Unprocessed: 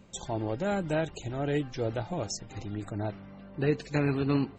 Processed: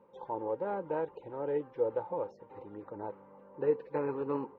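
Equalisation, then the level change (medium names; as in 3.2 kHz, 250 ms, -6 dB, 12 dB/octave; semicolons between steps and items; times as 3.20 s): two resonant band-passes 680 Hz, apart 0.83 oct; distance through air 290 m; +7.5 dB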